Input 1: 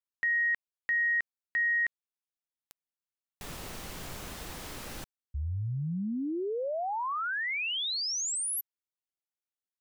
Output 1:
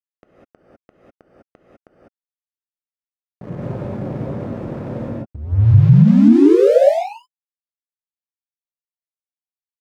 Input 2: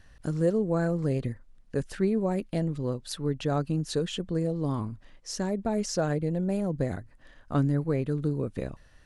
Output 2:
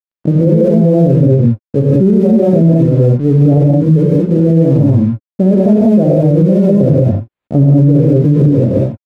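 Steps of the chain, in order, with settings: elliptic band-pass 110–610 Hz, stop band 70 dB; bass shelf 160 Hz +8 dB; crossover distortion -51.5 dBFS; gated-style reverb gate 220 ms rising, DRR -4.5 dB; loudness maximiser +17.5 dB; trim -1 dB

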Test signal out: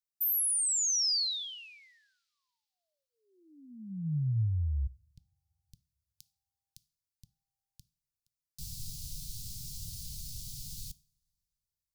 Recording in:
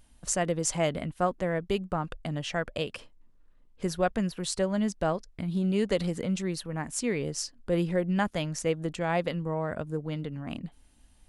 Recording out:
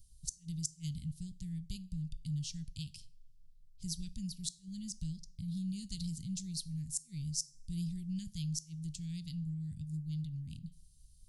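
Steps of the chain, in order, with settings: elliptic band-stop 140–4500 Hz, stop band 60 dB; inverted gate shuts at -21 dBFS, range -33 dB; two-slope reverb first 0.43 s, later 2.8 s, from -27 dB, DRR 16.5 dB

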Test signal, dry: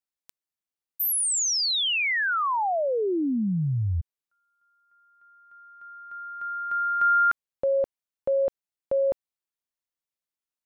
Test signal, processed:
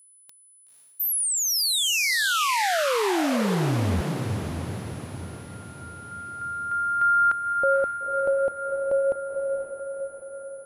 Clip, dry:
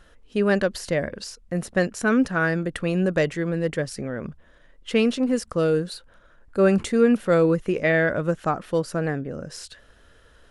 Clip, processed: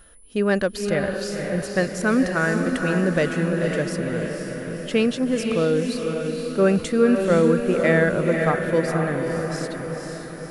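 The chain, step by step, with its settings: echo that smears into a reverb 507 ms, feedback 57%, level -4.5 dB; whistle 10 kHz -52 dBFS

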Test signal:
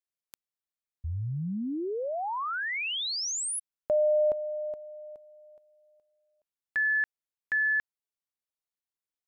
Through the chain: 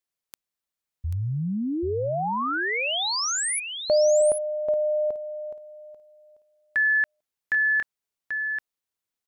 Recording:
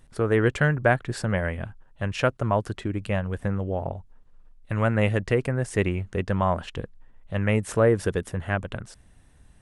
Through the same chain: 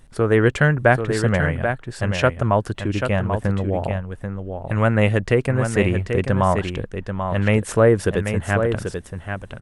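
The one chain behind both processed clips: delay 787 ms -7 dB; trim +5 dB

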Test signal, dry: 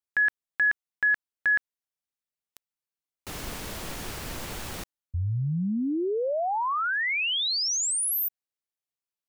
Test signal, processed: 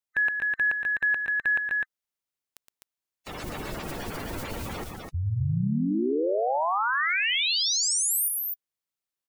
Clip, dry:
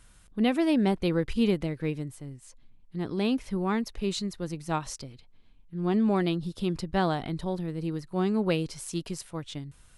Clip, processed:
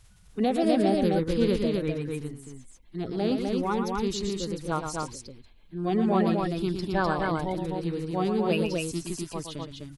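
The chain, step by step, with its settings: coarse spectral quantiser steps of 30 dB; loudspeakers at several distances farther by 40 m -7 dB, 87 m -3 dB

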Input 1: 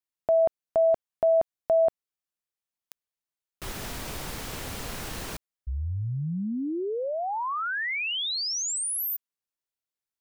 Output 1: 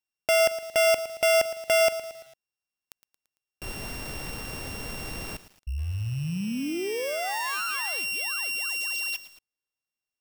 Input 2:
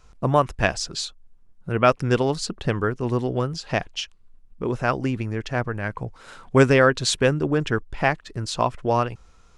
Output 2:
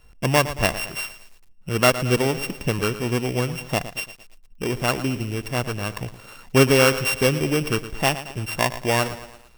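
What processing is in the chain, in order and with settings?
sorted samples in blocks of 16 samples; bit-crushed delay 113 ms, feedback 55%, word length 7-bit, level -13 dB

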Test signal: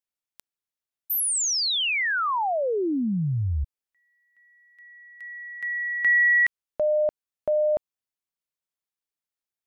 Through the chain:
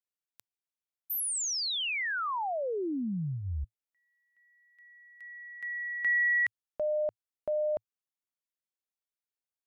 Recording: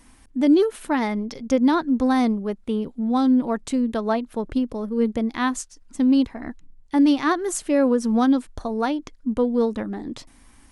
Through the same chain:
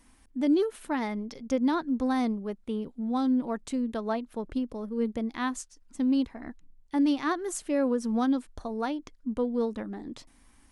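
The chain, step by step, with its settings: peaking EQ 110 Hz -6.5 dB 0.22 oct; trim -7.5 dB

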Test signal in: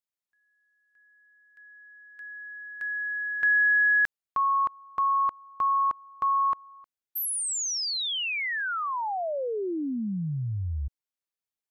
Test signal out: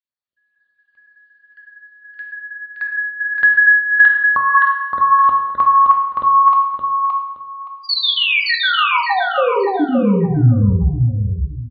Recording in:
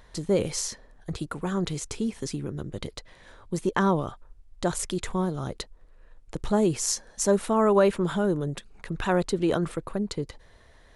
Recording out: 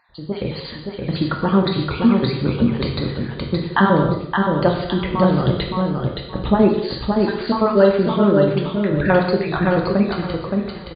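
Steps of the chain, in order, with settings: random holes in the spectrogram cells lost 35%; high-pass 48 Hz; peaking EQ 87 Hz +4 dB 1.4 oct; level rider gain up to 15 dB; brick-wall FIR low-pass 4.8 kHz; feedback delay 570 ms, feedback 22%, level -4 dB; gated-style reverb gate 310 ms falling, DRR 1.5 dB; trim -2.5 dB

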